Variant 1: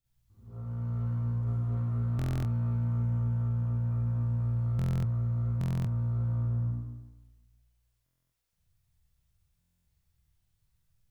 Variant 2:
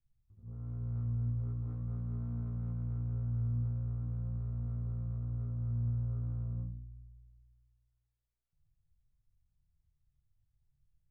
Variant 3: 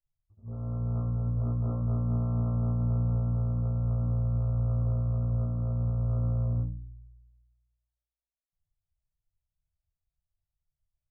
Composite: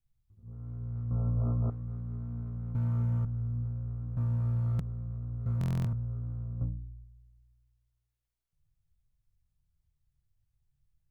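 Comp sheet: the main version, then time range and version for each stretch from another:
2
1.11–1.70 s: from 3
2.75–3.25 s: from 1
4.17–4.80 s: from 1
5.46–5.93 s: from 1
6.61–7.04 s: from 3

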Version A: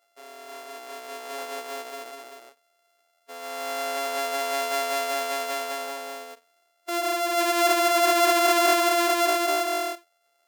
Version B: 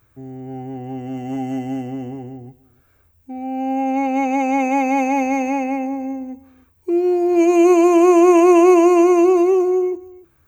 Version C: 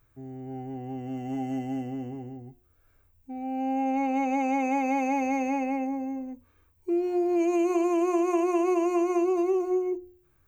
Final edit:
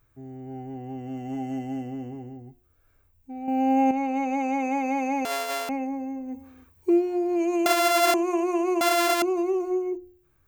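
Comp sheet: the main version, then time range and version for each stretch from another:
C
3.48–3.91 s: from B
5.25–5.69 s: from A
6.31–6.98 s: from B, crossfade 0.16 s
7.66–8.14 s: from A
8.81–9.22 s: from A

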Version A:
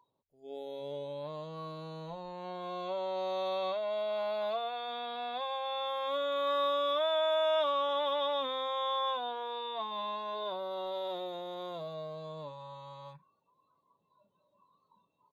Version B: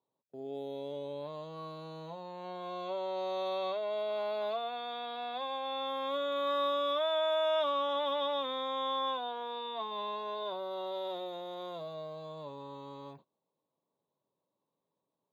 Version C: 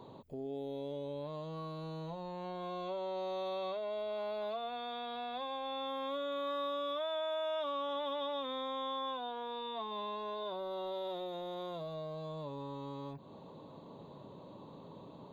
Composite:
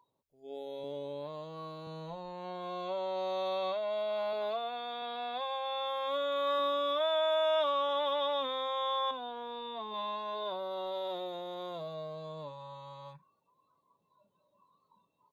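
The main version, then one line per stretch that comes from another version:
A
0.84–1.87 s: from B
4.33–5.02 s: from B
6.59–7.00 s: from B
9.11–9.94 s: from C

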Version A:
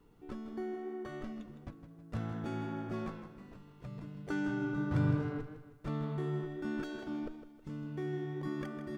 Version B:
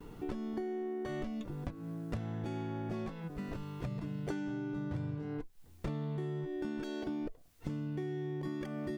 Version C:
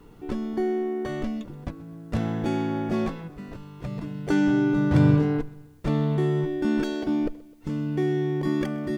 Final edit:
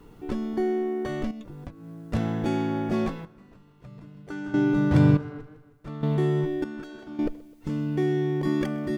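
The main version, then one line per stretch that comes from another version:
C
1.31–1.98 s: from B
3.25–4.54 s: from A
5.17–6.03 s: from A
6.64–7.19 s: from A

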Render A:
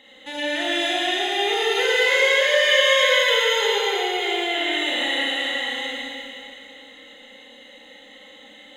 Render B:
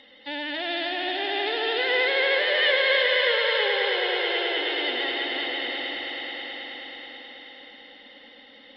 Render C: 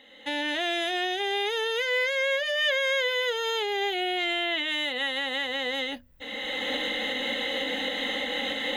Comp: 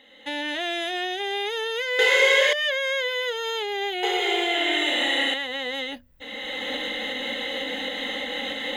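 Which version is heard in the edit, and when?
C
1.99–2.53 s: from A
4.03–5.34 s: from A
not used: B

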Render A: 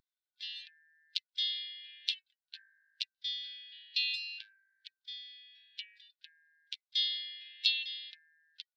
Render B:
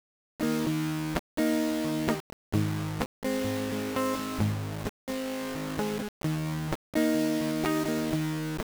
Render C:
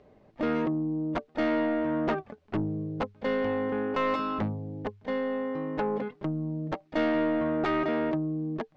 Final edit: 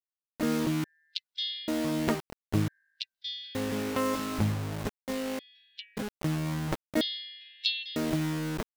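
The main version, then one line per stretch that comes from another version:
B
0.84–1.68 s: from A
2.68–3.55 s: from A
5.39–5.97 s: from A
7.01–7.96 s: from A
not used: C

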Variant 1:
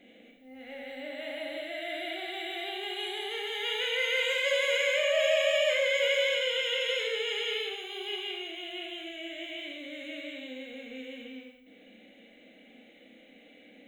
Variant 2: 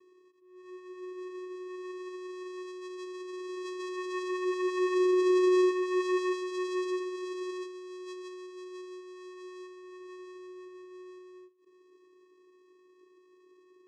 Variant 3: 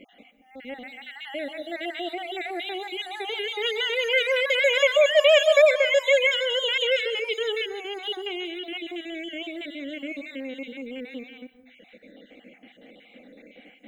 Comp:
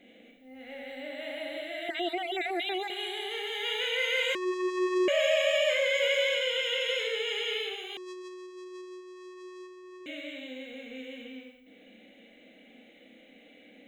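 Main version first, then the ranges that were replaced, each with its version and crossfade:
1
1.89–2.90 s: from 3
4.35–5.08 s: from 2
7.97–10.06 s: from 2

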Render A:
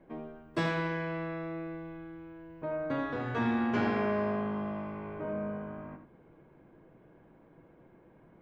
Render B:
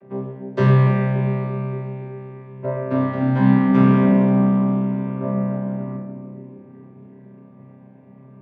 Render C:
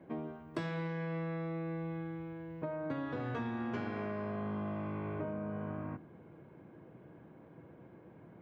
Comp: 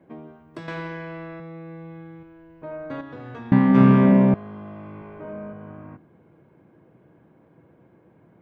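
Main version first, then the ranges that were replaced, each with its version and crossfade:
C
0.68–1.40 s: from A
2.23–3.01 s: from A
3.52–4.34 s: from B
5.02–5.53 s: from A

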